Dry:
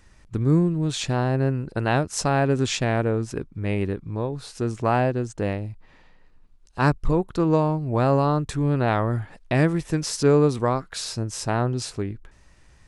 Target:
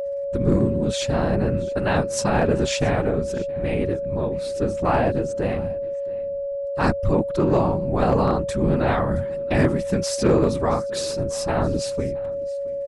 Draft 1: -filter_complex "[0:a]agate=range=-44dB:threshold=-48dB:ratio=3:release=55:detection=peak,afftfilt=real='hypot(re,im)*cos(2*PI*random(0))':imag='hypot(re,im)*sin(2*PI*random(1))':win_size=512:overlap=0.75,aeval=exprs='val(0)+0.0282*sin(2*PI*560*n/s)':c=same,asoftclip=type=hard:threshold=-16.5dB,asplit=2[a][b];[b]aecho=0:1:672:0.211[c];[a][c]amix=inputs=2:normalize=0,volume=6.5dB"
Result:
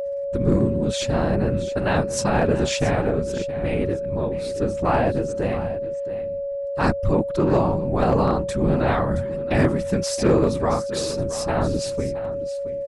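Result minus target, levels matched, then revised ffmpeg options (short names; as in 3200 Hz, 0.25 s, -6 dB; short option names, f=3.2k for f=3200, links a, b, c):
echo-to-direct +8 dB
-filter_complex "[0:a]agate=range=-44dB:threshold=-48dB:ratio=3:release=55:detection=peak,afftfilt=real='hypot(re,im)*cos(2*PI*random(0))':imag='hypot(re,im)*sin(2*PI*random(1))':win_size=512:overlap=0.75,aeval=exprs='val(0)+0.0282*sin(2*PI*560*n/s)':c=same,asoftclip=type=hard:threshold=-16.5dB,asplit=2[a][b];[b]aecho=0:1:672:0.0841[c];[a][c]amix=inputs=2:normalize=0,volume=6.5dB"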